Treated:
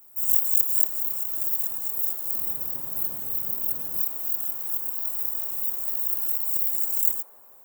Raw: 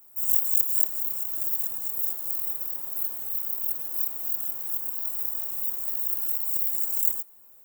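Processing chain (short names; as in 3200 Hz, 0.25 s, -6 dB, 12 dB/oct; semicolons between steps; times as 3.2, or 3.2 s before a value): 2.33–4.02 bell 130 Hz +12 dB 2.7 oct; band-limited delay 0.178 s, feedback 68%, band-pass 770 Hz, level -8.5 dB; gain +1.5 dB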